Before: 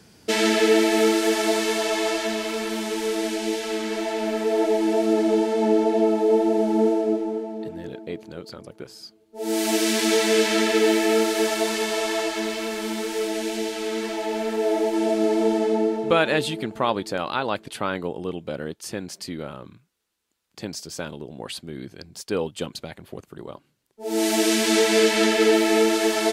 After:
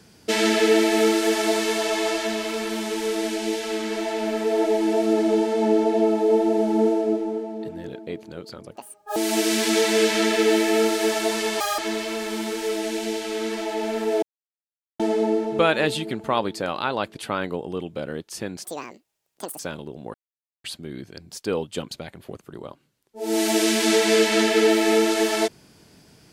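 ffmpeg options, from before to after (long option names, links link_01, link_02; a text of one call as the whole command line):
ffmpeg -i in.wav -filter_complex "[0:a]asplit=10[link_01][link_02][link_03][link_04][link_05][link_06][link_07][link_08][link_09][link_10];[link_01]atrim=end=8.764[link_11];[link_02]atrim=start=8.76:end=9.52,asetpts=PTS-STARTPTS,asetrate=83349,aresample=44100,atrim=end_sample=17733,asetpts=PTS-STARTPTS[link_12];[link_03]atrim=start=9.516:end=11.964[link_13];[link_04]atrim=start=11.96:end=12.3,asetpts=PTS-STARTPTS,asetrate=82026,aresample=44100,atrim=end_sample=8061,asetpts=PTS-STARTPTS[link_14];[link_05]atrim=start=12.296:end=14.74,asetpts=PTS-STARTPTS,afade=type=out:start_time=2.44:duration=0.004:curve=hsin[link_15];[link_06]atrim=start=14.74:end=15.51,asetpts=PTS-STARTPTS,volume=0[link_16];[link_07]atrim=start=15.51:end=19.164,asetpts=PTS-STARTPTS,afade=type=in:duration=0.004:curve=hsin[link_17];[link_08]atrim=start=19.16:end=20.93,asetpts=PTS-STARTPTS,asetrate=82467,aresample=44100[link_18];[link_09]atrim=start=20.926:end=21.48,asetpts=PTS-STARTPTS,afade=type=out:start_time=0.55:duration=0.004:curve=hsin,apad=pad_dur=0.5[link_19];[link_10]atrim=start=21.48,asetpts=PTS-STARTPTS,afade=type=in:duration=0.004:curve=hsin[link_20];[link_11][link_12]acrossfade=duration=0.004:curve1=hsin:curve2=hsin[link_21];[link_21][link_13]acrossfade=duration=0.004:curve1=hsin:curve2=hsin[link_22];[link_22][link_14]acrossfade=duration=0.004:curve1=hsin:curve2=hsin[link_23];[link_15][link_16][link_17]concat=n=3:v=0:a=1[link_24];[link_23][link_24]acrossfade=duration=0.004:curve1=hsin:curve2=hsin[link_25];[link_25][link_18]acrossfade=duration=0.004:curve1=hsin:curve2=hsin[link_26];[link_19][link_20]concat=n=2:v=0:a=1[link_27];[link_26][link_27]acrossfade=duration=0.004:curve1=hsin:curve2=hsin" out.wav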